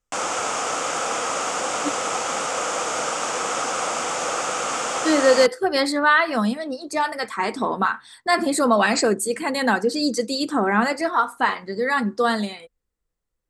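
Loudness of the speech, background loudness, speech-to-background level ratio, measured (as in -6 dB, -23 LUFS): -21.0 LUFS, -24.5 LUFS, 3.5 dB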